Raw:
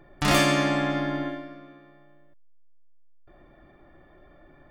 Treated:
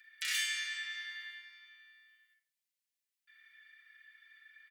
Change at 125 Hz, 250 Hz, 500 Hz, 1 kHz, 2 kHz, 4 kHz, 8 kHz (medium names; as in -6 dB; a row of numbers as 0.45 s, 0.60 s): under -40 dB, under -40 dB, under -40 dB, -32.0 dB, -8.5 dB, -7.0 dB, -6.5 dB